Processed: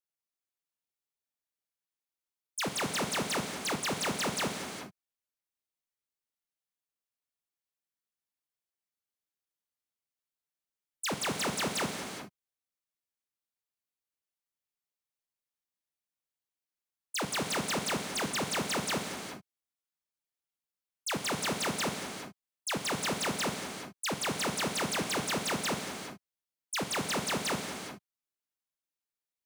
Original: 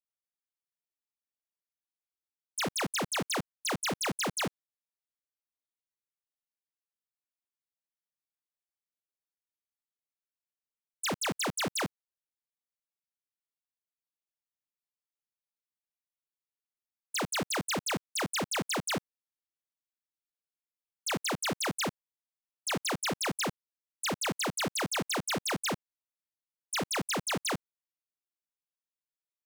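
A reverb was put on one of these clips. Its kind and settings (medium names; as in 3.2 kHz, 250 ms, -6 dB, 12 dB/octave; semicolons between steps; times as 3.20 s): gated-style reverb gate 440 ms flat, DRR 3.5 dB; trim -1.5 dB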